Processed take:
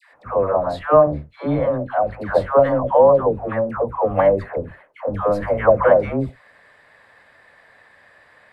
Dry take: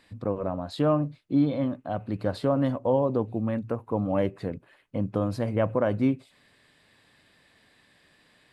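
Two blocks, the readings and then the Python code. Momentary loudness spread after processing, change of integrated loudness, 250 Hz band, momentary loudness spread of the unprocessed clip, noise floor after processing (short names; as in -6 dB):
13 LU, +9.0 dB, -0.5 dB, 8 LU, -53 dBFS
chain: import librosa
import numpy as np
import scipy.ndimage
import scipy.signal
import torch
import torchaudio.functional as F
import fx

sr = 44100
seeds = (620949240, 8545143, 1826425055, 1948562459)

y = fx.octave_divider(x, sr, octaves=1, level_db=-3.0)
y = fx.band_shelf(y, sr, hz=1000.0, db=14.5, octaves=2.5)
y = fx.dispersion(y, sr, late='lows', ms=143.0, hz=740.0)
y = y * librosa.db_to_amplitude(-1.0)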